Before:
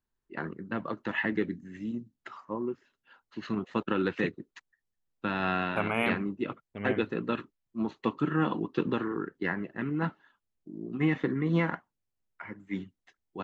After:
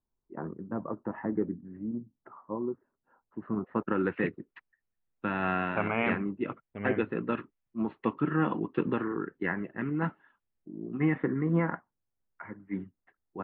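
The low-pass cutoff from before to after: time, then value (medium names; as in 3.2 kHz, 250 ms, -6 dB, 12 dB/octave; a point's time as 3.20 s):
low-pass 24 dB/octave
3.41 s 1.1 kHz
3.76 s 1.7 kHz
4.30 s 2.6 kHz
10.71 s 2.6 kHz
11.50 s 1.8 kHz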